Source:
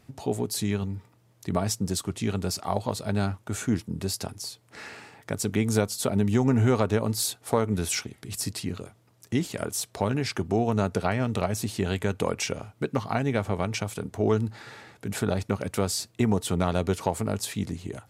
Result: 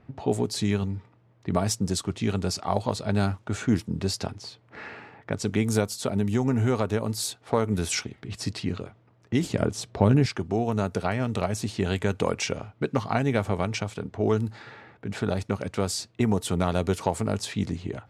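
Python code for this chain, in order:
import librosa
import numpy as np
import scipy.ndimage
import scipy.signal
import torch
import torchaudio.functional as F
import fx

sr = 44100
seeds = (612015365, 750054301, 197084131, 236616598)

y = fx.env_lowpass(x, sr, base_hz=1900.0, full_db=-21.0)
y = fx.low_shelf(y, sr, hz=470.0, db=10.5, at=(9.43, 10.26))
y = fx.rider(y, sr, range_db=4, speed_s=2.0)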